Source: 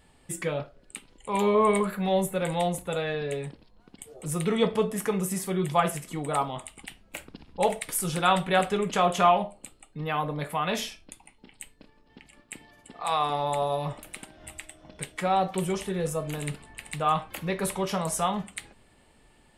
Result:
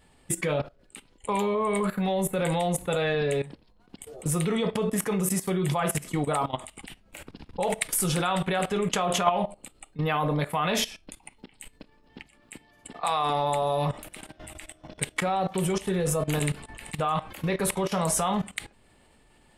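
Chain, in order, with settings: level quantiser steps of 17 dB; gain +8.5 dB

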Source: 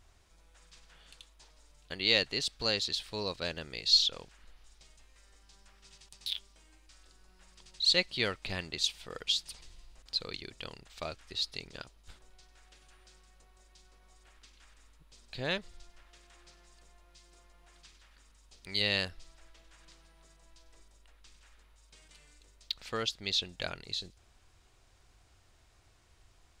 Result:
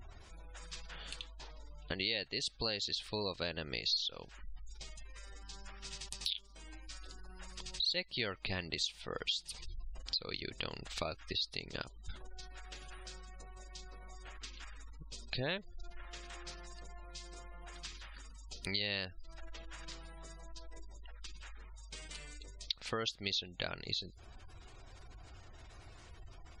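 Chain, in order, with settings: spectral gate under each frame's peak -25 dB strong; 1.19–2 air absorption 130 m; compressor 4:1, threshold -48 dBFS, peak gain reduction 23 dB; gain +11 dB

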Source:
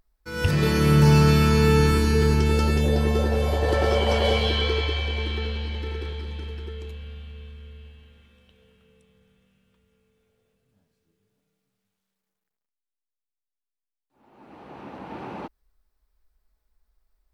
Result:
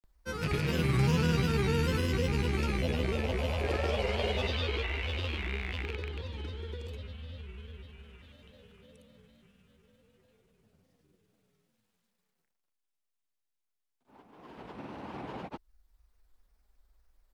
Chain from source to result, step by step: rattling part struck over -27 dBFS, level -18 dBFS; grains, pitch spread up and down by 3 st; three-band squash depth 40%; gain -8.5 dB

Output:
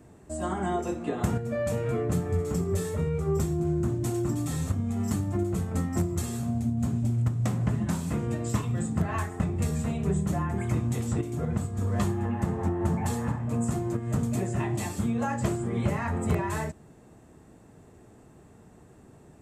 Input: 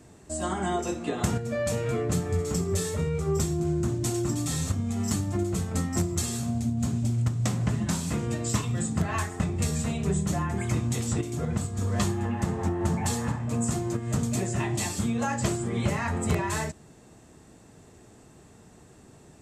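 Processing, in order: bell 5200 Hz -10 dB 2.1 oct

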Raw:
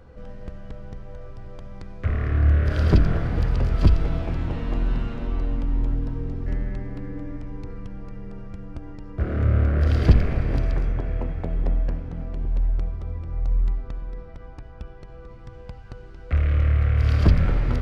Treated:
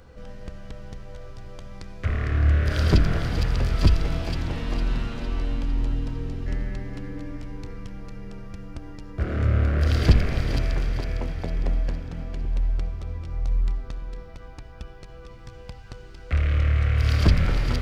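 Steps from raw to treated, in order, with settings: high shelf 2500 Hz +11.5 dB; on a send: thin delay 0.456 s, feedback 48%, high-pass 2100 Hz, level -6.5 dB; on the sum: gain -1.5 dB

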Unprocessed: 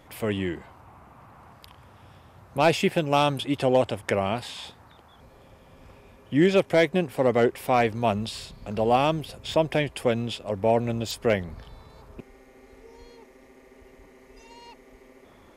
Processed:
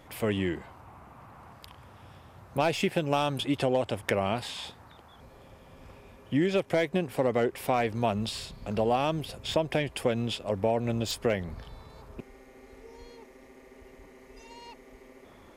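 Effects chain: tracing distortion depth 0.033 ms; compressor, threshold -22 dBFS, peak gain reduction 7.5 dB

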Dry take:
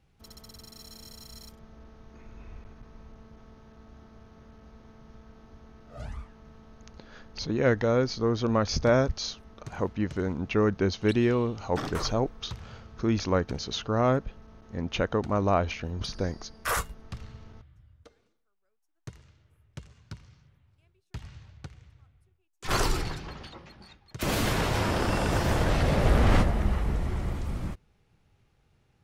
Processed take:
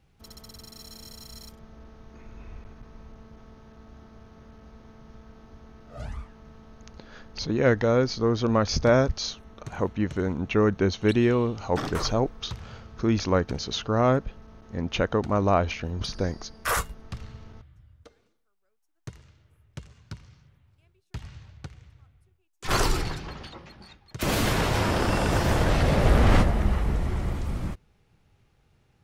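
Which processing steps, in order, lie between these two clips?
9.29–11.43 notch 4900 Hz, Q 7.3; gain +2.5 dB

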